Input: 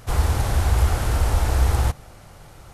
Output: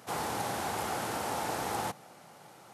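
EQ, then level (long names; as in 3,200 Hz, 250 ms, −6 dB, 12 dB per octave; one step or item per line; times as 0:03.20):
high-pass filter 170 Hz 24 dB per octave
parametric band 830 Hz +5 dB 0.37 octaves
−6.0 dB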